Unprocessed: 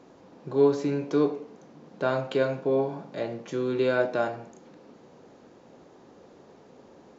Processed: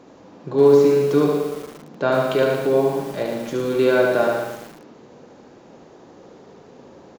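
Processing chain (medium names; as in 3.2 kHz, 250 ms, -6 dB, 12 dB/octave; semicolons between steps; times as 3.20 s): on a send: feedback delay 73 ms, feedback 41%, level -4.5 dB; on the sum: bit-crushed delay 115 ms, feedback 55%, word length 7-bit, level -6 dB; trim +5.5 dB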